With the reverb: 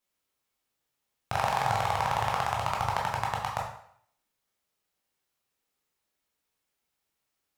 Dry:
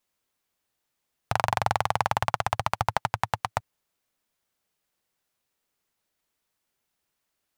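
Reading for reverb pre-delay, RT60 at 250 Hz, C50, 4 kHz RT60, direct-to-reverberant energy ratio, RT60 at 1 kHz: 13 ms, 0.55 s, 4.5 dB, 0.55 s, −2.5 dB, 0.65 s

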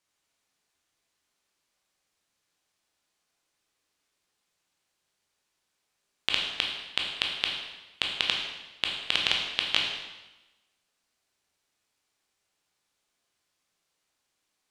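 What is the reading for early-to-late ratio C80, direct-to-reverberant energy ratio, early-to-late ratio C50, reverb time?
5.0 dB, −0.5 dB, 3.0 dB, 1.1 s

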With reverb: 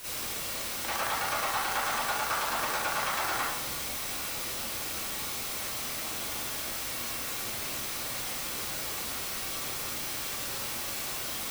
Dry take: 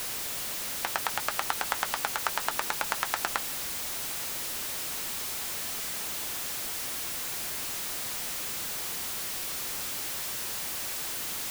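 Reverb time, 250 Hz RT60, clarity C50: 0.90 s, 1.0 s, −3.5 dB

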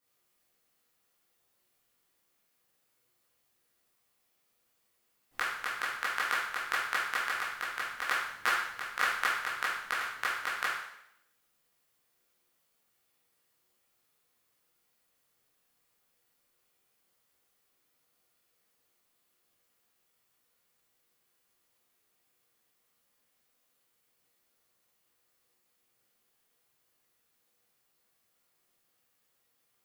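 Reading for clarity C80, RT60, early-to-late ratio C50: 4.5 dB, 0.75 s, 1.0 dB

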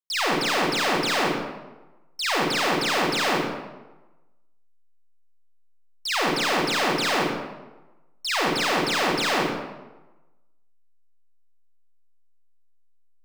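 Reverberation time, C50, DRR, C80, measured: 1.1 s, −0.5 dB, −3.0 dB, 2.5 dB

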